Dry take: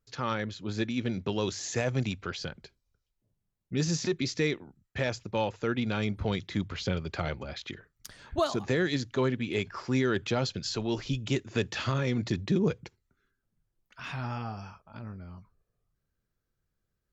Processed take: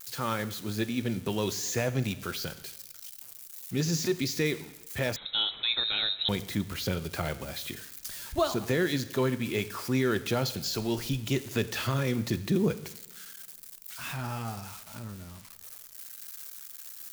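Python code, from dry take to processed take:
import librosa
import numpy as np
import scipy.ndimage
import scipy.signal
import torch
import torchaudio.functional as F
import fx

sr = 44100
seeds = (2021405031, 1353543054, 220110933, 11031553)

y = x + 0.5 * 10.0 ** (-32.5 / 20.0) * np.diff(np.sign(x), prepend=np.sign(x[:1]))
y = fx.rev_double_slope(y, sr, seeds[0], early_s=0.95, late_s=2.9, knee_db=-25, drr_db=12.5)
y = fx.freq_invert(y, sr, carrier_hz=3900, at=(5.16, 6.29))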